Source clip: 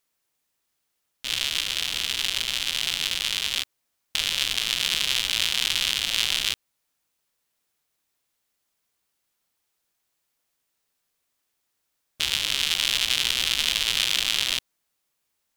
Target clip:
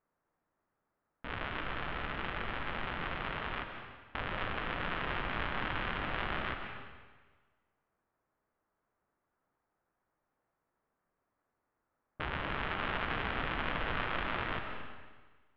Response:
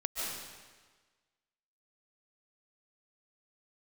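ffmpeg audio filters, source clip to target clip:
-filter_complex "[0:a]lowpass=frequency=1500:width=0.5412,lowpass=frequency=1500:width=1.3066,asplit=2[link_01][link_02];[1:a]atrim=start_sample=2205,lowpass=6600[link_03];[link_02][link_03]afir=irnorm=-1:irlink=0,volume=-5dB[link_04];[link_01][link_04]amix=inputs=2:normalize=0"

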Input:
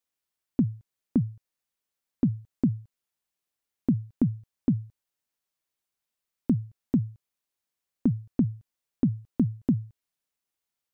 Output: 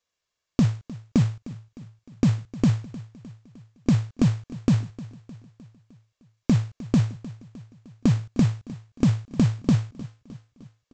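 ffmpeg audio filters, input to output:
ffmpeg -i in.wav -af "aecho=1:1:1.8:0.44,aresample=16000,acrusher=bits=4:mode=log:mix=0:aa=0.000001,aresample=44100,aecho=1:1:306|612|918|1224|1530:0.126|0.0692|0.0381|0.0209|0.0115,volume=6.5dB" out.wav

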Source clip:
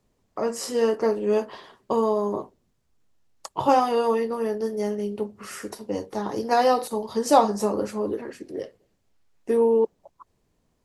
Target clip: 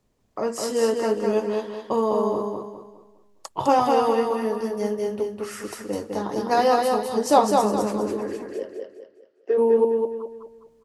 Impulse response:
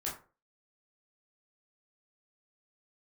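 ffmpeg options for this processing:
-filter_complex "[0:a]asplit=3[link_01][link_02][link_03];[link_01]afade=type=out:start_time=8.45:duration=0.02[link_04];[link_02]highpass=frequency=380:width=0.5412,highpass=frequency=380:width=1.3066,equalizer=frequency=410:width_type=q:width=4:gain=5,equalizer=frequency=620:width_type=q:width=4:gain=3,equalizer=frequency=970:width_type=q:width=4:gain=-8,equalizer=frequency=1500:width_type=q:width=4:gain=5,equalizer=frequency=2200:width_type=q:width=4:gain=-7,equalizer=frequency=3700:width_type=q:width=4:gain=-7,lowpass=frequency=4400:width=0.5412,lowpass=frequency=4400:width=1.3066,afade=type=in:start_time=8.45:duration=0.02,afade=type=out:start_time=9.57:duration=0.02[link_05];[link_03]afade=type=in:start_time=9.57:duration=0.02[link_06];[link_04][link_05][link_06]amix=inputs=3:normalize=0,aecho=1:1:205|410|615|820|1025:0.668|0.241|0.0866|0.0312|0.0112"

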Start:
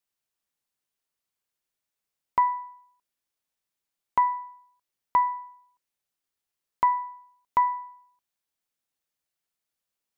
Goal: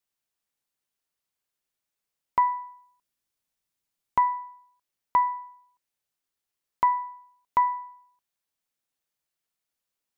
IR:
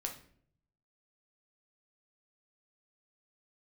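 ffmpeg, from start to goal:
-filter_complex "[0:a]asettb=1/sr,asplit=3[link_01][link_02][link_03];[link_01]atrim=end=2.444[link_04];[link_02]atrim=start=2.44:end=4.29,asetpts=PTS-STARTPTS,afade=type=in:duration=0.004:curve=qsin,afade=type=out:start_time=1.846:duration=0.004:curve=qsin,bass=frequency=250:gain=5,treble=frequency=4000:gain=2[link_05];[link_03]atrim=start=4.286[link_06];[link_04][link_05]acrossfade=duration=0.004:curve1=hsin:curve2=qsin[link_07];[link_07][link_06]acrossfade=duration=0.004:curve1=qsin:curve2=hsin"

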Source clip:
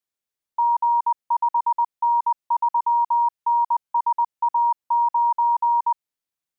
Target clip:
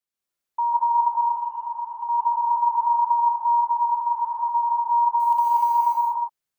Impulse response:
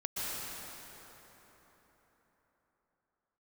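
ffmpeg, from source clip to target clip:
-filter_complex "[0:a]asettb=1/sr,asplit=3[link_01][link_02][link_03];[link_01]atrim=end=1.084[link_04];[link_02]atrim=start=1.08:end=2.09,asetpts=PTS-STARTPTS,afade=type=in:duration=0.004:curve=qsin,afade=type=out:start_time=1.006:duration=0.004:curve=qsin,acompressor=threshold=-28dB:ratio=6[link_05];[link_03]atrim=start=2.086[link_06];[link_04][link_05]acrossfade=duration=0.004:curve1=hsin:curve2=qsin[link_07];[link_07][link_06]acrossfade=duration=0.004:curve1=qsin:curve2=hsin,asplit=3[link_08][link_09][link_10];[link_08]afade=type=out:start_time=3.62:duration=0.02[link_11];[link_09]highpass=910,afade=type=in:start_time=3.62:duration=0.02,afade=type=out:start_time=4.55:duration=0.02[link_12];[link_10]afade=type=in:start_time=4.55:duration=0.02[link_13];[link_11][link_12][link_13]amix=inputs=3:normalize=0,asettb=1/sr,asplit=3[link_14][link_15][link_16];[link_14]atrim=end=5.204[link_17];[link_15]atrim=start=5.2:end=5.78,asetpts=PTS-STARTPTS,afade=type=in:duration=0.004:curve=qsin,afade=type=out:start_time=0.576:duration=0.004:curve=qsin,aeval=exprs='val(0)*gte(abs(val(0)),0.0211)':channel_layout=same[link_18];[link_16]atrim=start=5.776[link_19];[link_17][link_18]acrossfade=duration=0.004:curve1=hsin:curve2=qsin[link_20];[link_20][link_19]acrossfade=duration=0.004:curve1=qsin:curve2=hsin[link_21];[1:a]atrim=start_sample=2205,afade=type=out:start_time=0.41:duration=0.01,atrim=end_sample=18522[link_22];[link_21][link_22]afir=irnorm=-1:irlink=0"

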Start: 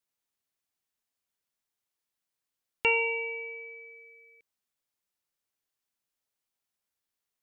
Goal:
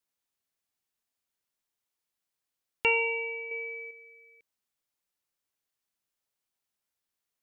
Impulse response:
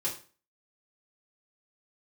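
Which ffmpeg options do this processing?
-filter_complex "[0:a]asettb=1/sr,asplit=3[link_01][link_02][link_03];[link_01]atrim=end=3.514[link_04];[link_02]atrim=start=3.51:end=3.91,asetpts=PTS-STARTPTS,afade=type=in:duration=0.004:curve=qsin,afade=type=out:start_time=0.396:duration=0.004:curve=qsin,acontrast=60[link_05];[link_03]atrim=start=3.906[link_06];[link_04][link_05]acrossfade=duration=0.004:curve1=hsin:curve2=qsin[link_07];[link_07][link_06]acrossfade=duration=0.004:curve1=qsin:curve2=hsin"

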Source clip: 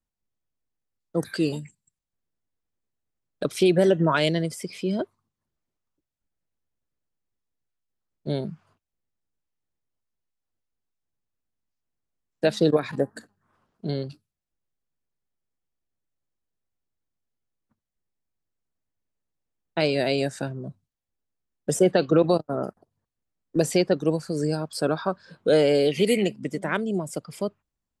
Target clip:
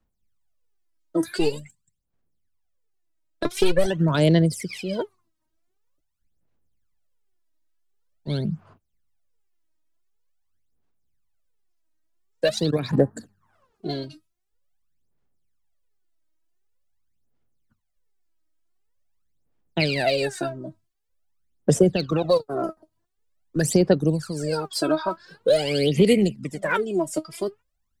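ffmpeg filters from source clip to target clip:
ffmpeg -i in.wav -filter_complex "[0:a]asettb=1/sr,asplit=3[link_01][link_02][link_03];[link_01]atrim=end=1.384[link_04];[link_02]atrim=start=1.38:end=3.86,asetpts=PTS-STARTPTS,afade=type=in:duration=0.004:curve=qsin,afade=type=out:start_time=2.476:duration=0.004:curve=qsin,aeval=exprs='0.376*(cos(1*acos(clip(val(0)/0.376,-1,1)))-cos(1*PI/2))+0.0376*(cos(4*acos(clip(val(0)/0.376,-1,1)))-cos(4*PI/2))+0.0106*(cos(5*acos(clip(val(0)/0.376,-1,1)))-cos(5*PI/2))+0.0211*(cos(7*acos(clip(val(0)/0.376,-1,1)))-cos(7*PI/2))':channel_layout=same[link_05];[link_03]atrim=start=3.856[link_06];[link_04][link_05]acrossfade=duration=0.004:curve1=hsin:curve2=qsin[link_07];[link_07][link_06]acrossfade=duration=0.004:curve1=qsin:curve2=hsin,aphaser=in_gain=1:out_gain=1:delay=3.2:decay=0.79:speed=0.46:type=sinusoidal,acrossover=split=130|3000[link_08][link_09][link_10];[link_09]acompressor=threshold=-19dB:ratio=2.5[link_11];[link_08][link_11][link_10]amix=inputs=3:normalize=0" out.wav

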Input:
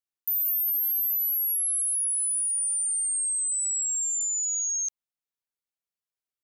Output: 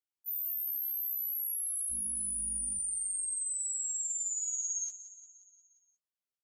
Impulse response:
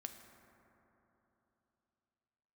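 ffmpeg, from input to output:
-filter_complex "[0:a]alimiter=level_in=2dB:limit=-24dB:level=0:latency=1,volume=-2dB,asettb=1/sr,asplit=3[link_01][link_02][link_03];[link_01]atrim=end=1.914[link_04];[link_02]atrim=start=1.91:end=2.78,asetpts=PTS-STARTPTS,afade=type=in:duration=0.004:curve=qsin,afade=type=out:start_time=0.866:duration=0.004:curve=qsin,aeval=exprs='val(0)+0.01*(sin(2*PI*50*n/s)+sin(2*PI*2*50*n/s)/2+sin(2*PI*3*50*n/s)/3+sin(2*PI*4*50*n/s)/4+sin(2*PI*5*50*n/s)/5)':channel_layout=same[link_05];[link_03]atrim=start=2.776[link_06];[link_04][link_05]acrossfade=duration=0.004:curve1=hsin:curve2=qsin[link_07];[link_07][link_06]acrossfade=duration=0.004:curve1=qsin:curve2=hsin,flanger=delay=7.4:depth=8.7:regen=-38:speed=1.4:shape=triangular,aecho=1:1:177|354|531|708|885|1062:0.188|0.111|0.0656|0.0387|0.0228|0.0135,afftfilt=real='re*1.73*eq(mod(b,3),0)':imag='im*1.73*eq(mod(b,3),0)':win_size=2048:overlap=0.75"

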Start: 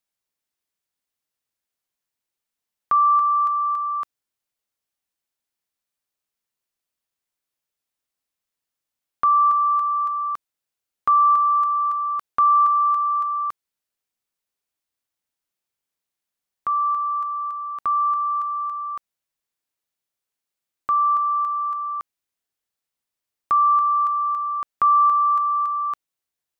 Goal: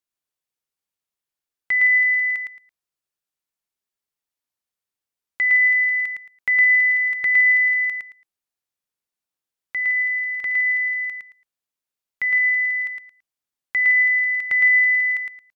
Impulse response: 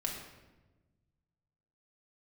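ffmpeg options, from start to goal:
-af "asetrate=75411,aresample=44100,aecho=1:1:111|222|333:0.668|0.147|0.0323,volume=-2.5dB"

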